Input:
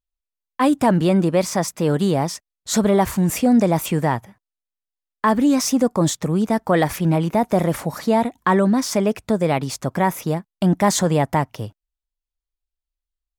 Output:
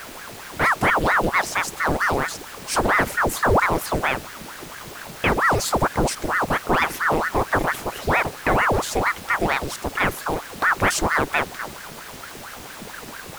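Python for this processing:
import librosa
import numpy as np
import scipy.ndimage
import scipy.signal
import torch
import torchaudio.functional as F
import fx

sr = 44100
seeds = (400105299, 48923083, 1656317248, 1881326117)

y = fx.dmg_noise_colour(x, sr, seeds[0], colour='pink', level_db=-34.0)
y = fx.ring_lfo(y, sr, carrier_hz=900.0, swing_pct=85, hz=4.4)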